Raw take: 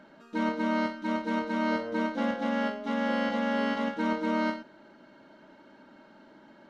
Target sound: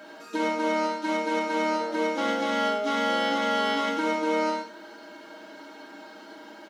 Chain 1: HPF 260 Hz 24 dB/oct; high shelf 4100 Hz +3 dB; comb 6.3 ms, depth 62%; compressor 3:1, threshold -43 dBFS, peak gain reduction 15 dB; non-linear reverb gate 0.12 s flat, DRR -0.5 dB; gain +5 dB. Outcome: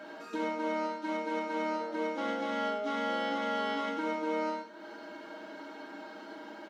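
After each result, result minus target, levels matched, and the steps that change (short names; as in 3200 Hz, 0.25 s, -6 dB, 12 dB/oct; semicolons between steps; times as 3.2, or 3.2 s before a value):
compressor: peak gain reduction +6.5 dB; 8000 Hz band -6.0 dB
change: compressor 3:1, threshold -32.5 dBFS, peak gain reduction 8 dB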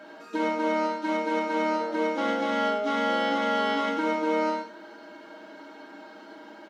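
8000 Hz band -6.0 dB
change: high shelf 4100 Hz +12.5 dB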